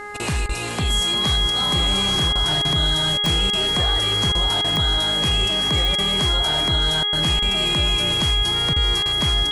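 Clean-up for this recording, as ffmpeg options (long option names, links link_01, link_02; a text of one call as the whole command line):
ffmpeg -i in.wav -af "adeclick=threshold=4,bandreject=frequency=414:width_type=h:width=4,bandreject=frequency=828:width_type=h:width=4,bandreject=frequency=1242:width_type=h:width=4,bandreject=frequency=1656:width_type=h:width=4,bandreject=frequency=2070:width_type=h:width=4,bandreject=frequency=3300:width=30" out.wav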